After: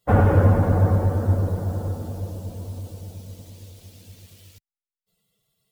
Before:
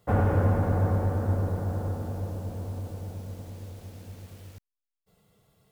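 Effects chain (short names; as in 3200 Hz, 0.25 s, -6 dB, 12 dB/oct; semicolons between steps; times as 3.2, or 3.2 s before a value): per-bin expansion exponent 1.5; gain +8.5 dB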